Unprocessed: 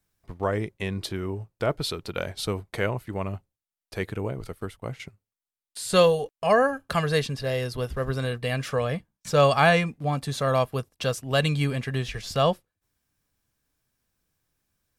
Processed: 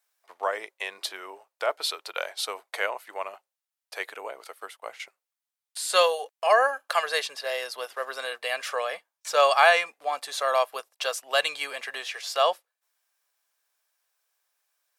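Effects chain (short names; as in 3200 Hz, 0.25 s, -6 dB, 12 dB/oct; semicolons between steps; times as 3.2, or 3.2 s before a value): HPF 610 Hz 24 dB/oct; gain +2.5 dB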